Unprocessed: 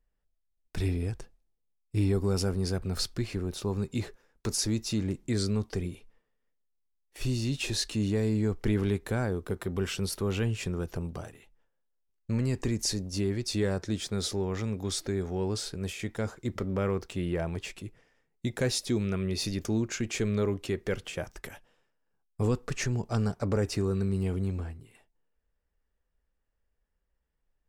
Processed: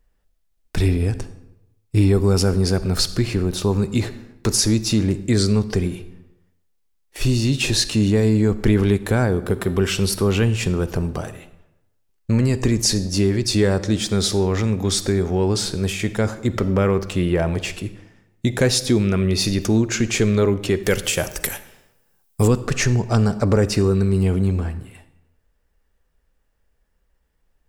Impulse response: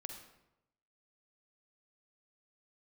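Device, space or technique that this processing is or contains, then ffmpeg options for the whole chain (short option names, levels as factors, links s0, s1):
compressed reverb return: -filter_complex "[0:a]asettb=1/sr,asplit=3[s0][s1][s2];[s0]atrim=end=20.834[s3];[s1]atrim=start=20.83:end=22.48,asetpts=PTS-STARTPTS,afade=t=in:d=0.004:c=qsin,afade=t=out:st=1.646:d=0.004:c=qsin,aemphasis=mode=production:type=75kf[s4];[s2]atrim=start=22.476[s5];[s3][s4]acrossfade=d=0.004:c1=hsin:c2=qsin[s6];[s6][s5]acrossfade=d=0.004:c1=qsin:c2=hsin,asplit=2[s7][s8];[1:a]atrim=start_sample=2205[s9];[s8][s9]afir=irnorm=-1:irlink=0,acompressor=threshold=0.0251:ratio=6,volume=0.891[s10];[s7][s10]amix=inputs=2:normalize=0,volume=2.66"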